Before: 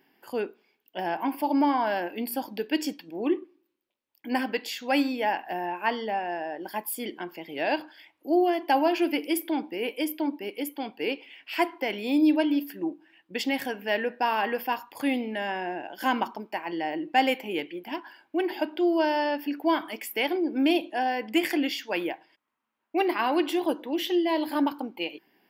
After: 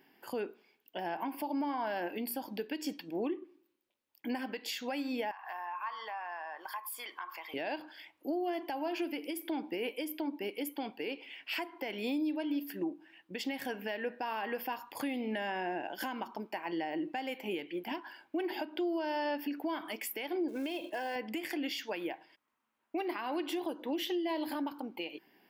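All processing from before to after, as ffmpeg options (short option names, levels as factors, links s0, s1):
-filter_complex "[0:a]asettb=1/sr,asplit=3[s0][s1][s2];[s0]atrim=end=5.314[s3];[s1]atrim=start=5.31:end=7.54,asetpts=PTS-STARTPTS,afade=t=in:d=0.004:c=qsin,afade=t=out:st=2.226:d=0.004:c=qsin,highpass=f=1100:t=q:w=8.4,acompressor=threshold=0.0112:ratio=4:attack=3.2:release=140:knee=1:detection=peak,bandreject=f=2900:w=13[s4];[s2]atrim=start=7.536[s5];[s3][s4]acrossfade=d=0.004:c1=hsin:c2=qsin[s6];[s6][s5]acrossfade=d=0.004:c1=qsin:c2=hsin,asettb=1/sr,asplit=3[s7][s8][s9];[s7]atrim=end=20.484[s10];[s8]atrim=start=20.48:end=21.16,asetpts=PTS-STARTPTS,afade=t=in:d=0.004:c=qsin,afade=t=out:st=0.676:d=0.004:c=qsin,aecho=1:1:1.9:0.48,atrim=end_sample=29988,acompressor=threshold=0.0282:ratio=20:attack=3.2:release=140:knee=1:detection=peak,acrusher=bits=6:mode=log:mix=0:aa=0.000001[s11];[s9]atrim=start=21.156[s12];[s10][s11]acrossfade=d=0.004:c1=hsin:c2=qsin[s13];[s13][s12]acrossfade=d=0.004:c1=qsin:c2=hsin,acompressor=threshold=0.0355:ratio=6,alimiter=level_in=1.33:limit=0.0631:level=0:latency=1:release=217,volume=0.75"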